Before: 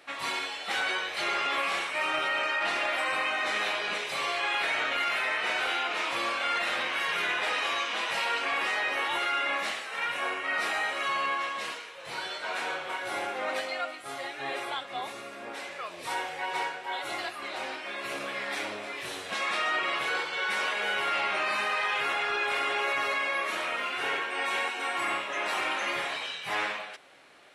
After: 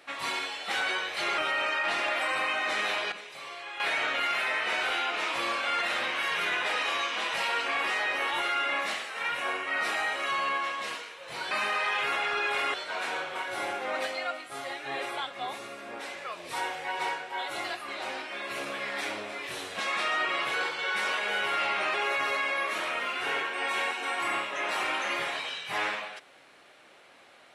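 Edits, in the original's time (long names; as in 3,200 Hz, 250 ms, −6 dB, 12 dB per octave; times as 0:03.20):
0:01.38–0:02.15: remove
0:03.89–0:04.57: clip gain −11 dB
0:21.48–0:22.71: move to 0:12.28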